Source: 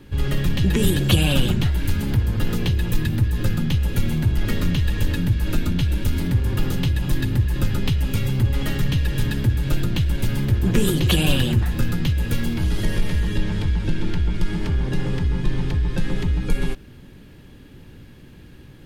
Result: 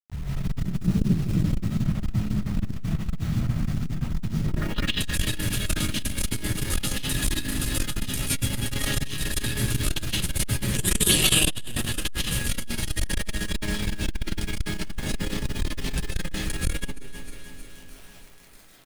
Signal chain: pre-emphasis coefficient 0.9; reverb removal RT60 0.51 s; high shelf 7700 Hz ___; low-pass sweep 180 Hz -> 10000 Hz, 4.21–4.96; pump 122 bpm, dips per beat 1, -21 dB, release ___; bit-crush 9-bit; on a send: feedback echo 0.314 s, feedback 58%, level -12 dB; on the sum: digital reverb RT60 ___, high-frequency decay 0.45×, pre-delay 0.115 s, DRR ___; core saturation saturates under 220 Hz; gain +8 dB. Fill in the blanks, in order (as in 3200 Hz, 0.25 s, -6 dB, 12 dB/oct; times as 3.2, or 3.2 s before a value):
-9.5 dB, 60 ms, 0.94 s, -8.5 dB